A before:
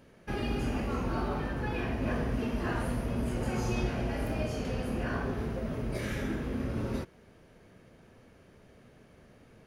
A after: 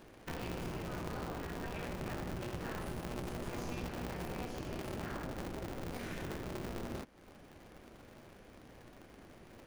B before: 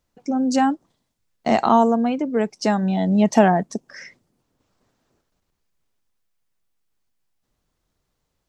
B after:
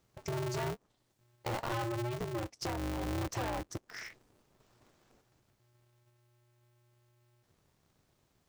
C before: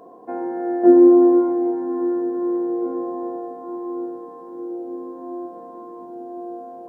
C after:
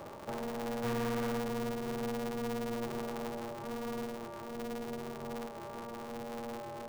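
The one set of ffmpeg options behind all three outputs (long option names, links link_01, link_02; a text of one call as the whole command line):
ffmpeg -i in.wav -af "aeval=exprs='(tanh(10*val(0)+0.4)-tanh(0.4))/10':channel_layout=same,acompressor=threshold=-49dB:ratio=2,aeval=exprs='val(0)*sgn(sin(2*PI*120*n/s))':channel_layout=same,volume=2.5dB" out.wav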